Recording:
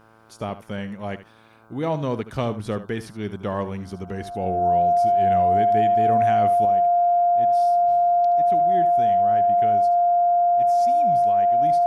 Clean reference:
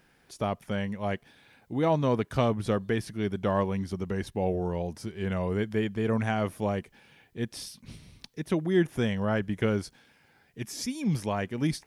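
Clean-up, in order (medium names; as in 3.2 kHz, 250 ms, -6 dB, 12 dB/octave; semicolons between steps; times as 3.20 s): de-hum 111 Hz, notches 14; band-stop 700 Hz, Q 30; inverse comb 75 ms -13.5 dB; trim 0 dB, from 6.65 s +8.5 dB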